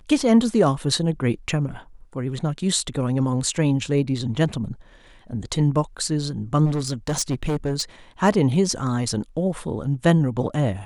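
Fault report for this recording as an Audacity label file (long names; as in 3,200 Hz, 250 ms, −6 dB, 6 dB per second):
6.650000	7.820000	clipping −19 dBFS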